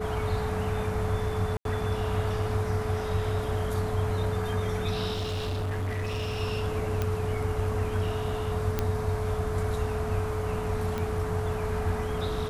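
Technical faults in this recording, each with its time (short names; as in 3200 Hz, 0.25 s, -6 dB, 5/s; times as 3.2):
tone 430 Hz -32 dBFS
1.57–1.65 gap 82 ms
5.14–6.41 clipped -27.5 dBFS
7.02 pop -15 dBFS
8.79 pop -12 dBFS
10.98 pop -18 dBFS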